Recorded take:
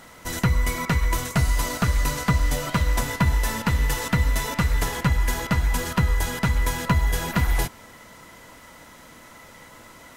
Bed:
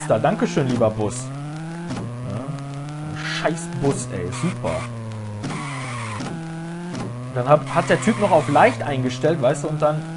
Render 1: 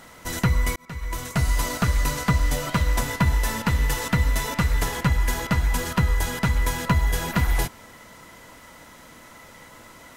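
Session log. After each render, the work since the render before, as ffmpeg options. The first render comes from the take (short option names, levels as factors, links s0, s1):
-filter_complex "[0:a]asplit=2[s0][s1];[s0]atrim=end=0.76,asetpts=PTS-STARTPTS,afade=t=out:st=0.756:d=0.004:c=hsin[s2];[s1]atrim=start=0.76,asetpts=PTS-STARTPTS,afade=t=in:d=0.76[s3];[s2][s3]concat=n=2:v=0:a=1"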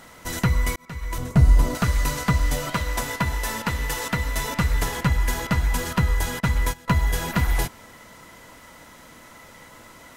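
-filter_complex "[0:a]asettb=1/sr,asplit=3[s0][s1][s2];[s0]atrim=end=1.184[s3];[s1]atrim=start=1.18:end=1.75,asetpts=PTS-STARTPTS,afade=t=in:d=0.004:c=qsin,afade=t=out:st=0.566:d=0.004:c=qsin,tiltshelf=f=810:g=8[s4];[s2]atrim=start=1.746[s5];[s3][s4]acrossfade=d=0.004:c1=hsin:c2=qsin[s6];[s6][s5]acrossfade=d=0.004:c1=qsin:c2=hsin,asettb=1/sr,asplit=3[s7][s8][s9];[s7]atrim=end=2.744[s10];[s8]atrim=start=2.74:end=4.37,asetpts=PTS-STARTPTS,afade=t=in:d=0.004:c=qsin,afade=t=out:st=1.626:d=0.004:c=qsin,bass=f=250:g=-6,treble=f=4000:g=0[s11];[s9]atrim=start=4.366[s12];[s10][s11]acrossfade=d=0.004:c1=hsin:c2=qsin[s13];[s13][s12]acrossfade=d=0.004:c1=qsin:c2=hsin,asettb=1/sr,asplit=3[s14][s15][s16];[s14]atrim=end=6.404[s17];[s15]atrim=start=6.4:end=6.88,asetpts=PTS-STARTPTS,afade=t=in:d=0.004:c=qsin,afade=t=out:st=0.476:d=0.004:c=qsin,agate=range=0.126:threshold=0.0562:ratio=16:release=100:detection=peak[s18];[s16]atrim=start=6.876[s19];[s17][s18]acrossfade=d=0.004:c1=hsin:c2=qsin[s20];[s20][s19]acrossfade=d=0.004:c1=qsin:c2=hsin"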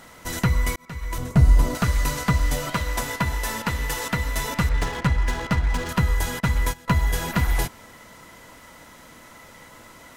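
-filter_complex "[0:a]asettb=1/sr,asplit=3[s0][s1][s2];[s0]atrim=end=4.694[s3];[s1]atrim=start=4.69:end=5.89,asetpts=PTS-STARTPTS,afade=t=in:d=0.004:c=qsin,afade=t=out:st=1.196:d=0.004:c=qsin,adynamicsmooth=sensitivity=7:basefreq=1900[s4];[s2]atrim=start=5.886[s5];[s3][s4]acrossfade=d=0.004:c1=hsin:c2=qsin[s6];[s6][s5]acrossfade=d=0.004:c1=qsin:c2=hsin"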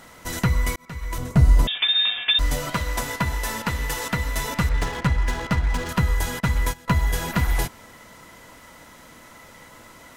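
-filter_complex "[0:a]asettb=1/sr,asplit=3[s0][s1][s2];[s0]atrim=end=1.674[s3];[s1]atrim=start=1.67:end=2.39,asetpts=PTS-STARTPTS,afade=t=in:d=0.004:c=qsin,afade=t=out:st=0.716:d=0.004:c=qsin,lowpass=f=3100:t=q:w=0.5098,lowpass=f=3100:t=q:w=0.6013,lowpass=f=3100:t=q:w=0.9,lowpass=f=3100:t=q:w=2.563,afreqshift=-3700[s4];[s2]atrim=start=2.386[s5];[s3][s4]acrossfade=d=0.004:c1=hsin:c2=qsin[s6];[s6][s5]acrossfade=d=0.004:c1=qsin:c2=hsin"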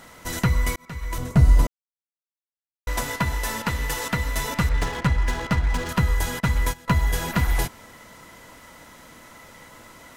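-filter_complex "[0:a]asplit=3[s0][s1][s2];[s0]atrim=end=1.67,asetpts=PTS-STARTPTS,afade=t=out:st=1.666:d=0.004:c=hsin[s3];[s1]atrim=start=1.67:end=2.87,asetpts=PTS-STARTPTS,volume=0[s4];[s2]atrim=start=2.87,asetpts=PTS-STARTPTS,afade=t=in:d=0.004:c=hsin[s5];[s3][s4][s5]concat=n=3:v=0:a=1"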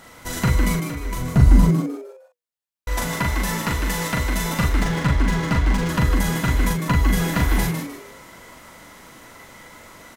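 -filter_complex "[0:a]asplit=2[s0][s1];[s1]adelay=40,volume=0.668[s2];[s0][s2]amix=inputs=2:normalize=0,asplit=2[s3][s4];[s4]asplit=4[s5][s6][s7][s8];[s5]adelay=153,afreqshift=120,volume=0.447[s9];[s6]adelay=306,afreqshift=240,volume=0.143[s10];[s7]adelay=459,afreqshift=360,volume=0.0457[s11];[s8]adelay=612,afreqshift=480,volume=0.0146[s12];[s9][s10][s11][s12]amix=inputs=4:normalize=0[s13];[s3][s13]amix=inputs=2:normalize=0"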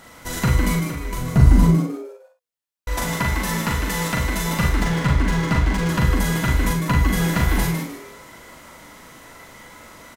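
-af "aecho=1:1:54|71:0.335|0.224"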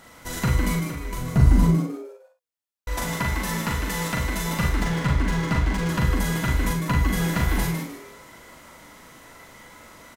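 -af "volume=0.668"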